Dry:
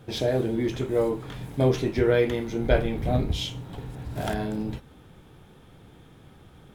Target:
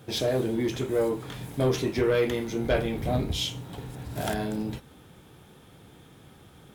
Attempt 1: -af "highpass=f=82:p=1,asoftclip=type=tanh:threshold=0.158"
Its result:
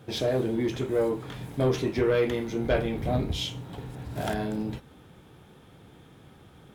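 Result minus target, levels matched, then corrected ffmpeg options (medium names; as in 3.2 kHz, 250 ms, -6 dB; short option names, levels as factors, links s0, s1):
8 kHz band -5.0 dB
-af "highpass=f=82:p=1,highshelf=f=4800:g=7.5,asoftclip=type=tanh:threshold=0.158"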